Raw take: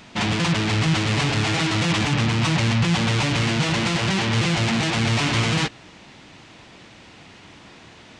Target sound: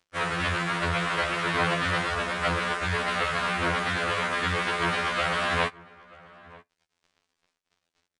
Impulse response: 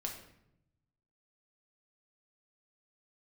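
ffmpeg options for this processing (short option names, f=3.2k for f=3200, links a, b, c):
-filter_complex "[0:a]highpass=f=1.1k:p=1,bandreject=f=1.6k:w=20,acrusher=bits=5:mix=0:aa=0.5,asetrate=23361,aresample=44100,atempo=1.88775,asplit=2[a][b];[b]adelay=932.9,volume=-21dB,highshelf=f=4k:g=-21[c];[a][c]amix=inputs=2:normalize=0,asplit=2[d][e];[1:a]atrim=start_sample=2205,atrim=end_sample=3528[f];[e][f]afir=irnorm=-1:irlink=0,volume=-20dB[g];[d][g]amix=inputs=2:normalize=0,aresample=22050,aresample=44100,afftfilt=real='re*2*eq(mod(b,4),0)':imag='im*2*eq(mod(b,4),0)':win_size=2048:overlap=0.75,volume=2dB"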